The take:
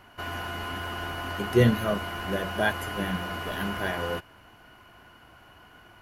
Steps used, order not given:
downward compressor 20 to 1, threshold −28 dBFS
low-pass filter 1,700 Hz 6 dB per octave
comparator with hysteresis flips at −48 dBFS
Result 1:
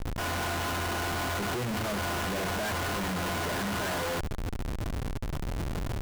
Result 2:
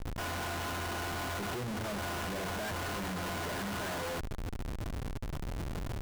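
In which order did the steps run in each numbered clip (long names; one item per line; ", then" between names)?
low-pass filter, then comparator with hysteresis, then downward compressor
downward compressor, then low-pass filter, then comparator with hysteresis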